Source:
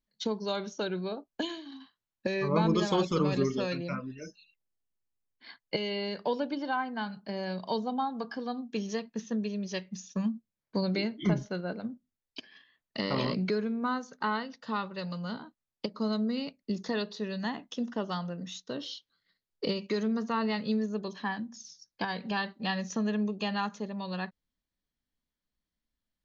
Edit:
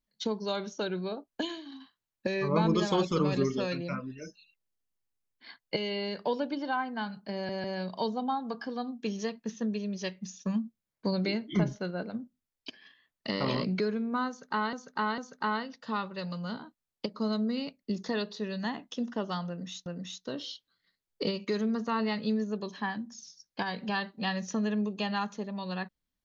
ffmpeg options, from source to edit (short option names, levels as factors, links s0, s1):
-filter_complex "[0:a]asplit=6[s0][s1][s2][s3][s4][s5];[s0]atrim=end=7.492[s6];[s1]atrim=start=7.338:end=7.492[s7];[s2]atrim=start=7.338:end=14.432[s8];[s3]atrim=start=13.978:end=14.432[s9];[s4]atrim=start=13.978:end=18.662[s10];[s5]atrim=start=18.278[s11];[s6][s7]acrossfade=d=0.004:c1=hsin:c2=hsin[s12];[s12][s8]acrossfade=d=0.004:c1=hsin:c2=hsin[s13];[s13][s9]acrossfade=d=0.004:c1=hsin:c2=hsin[s14];[s14][s10]acrossfade=d=0.004:c1=hsin:c2=hsin[s15];[s15][s11]acrossfade=d=0.004:c1=hsin:c2=hsin"